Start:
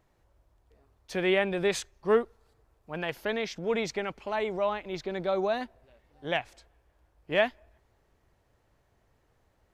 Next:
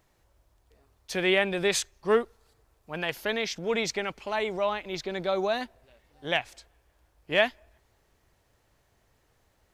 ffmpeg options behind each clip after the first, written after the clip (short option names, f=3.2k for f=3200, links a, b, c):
-af "highshelf=f=2.3k:g=8.5"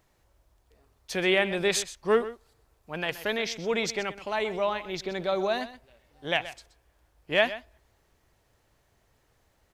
-af "aecho=1:1:126:0.188"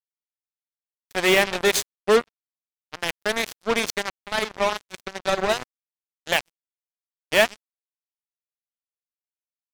-af "acrusher=bits=3:mix=0:aa=0.5,volume=5dB"